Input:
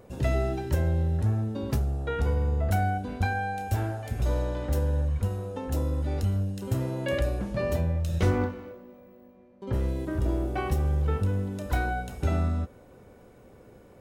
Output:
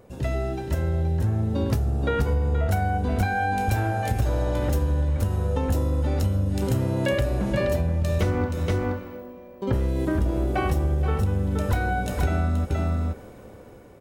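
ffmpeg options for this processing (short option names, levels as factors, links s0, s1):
-af "dynaudnorm=f=340:g=7:m=3.76,aecho=1:1:475:0.447,acompressor=threshold=0.1:ratio=6"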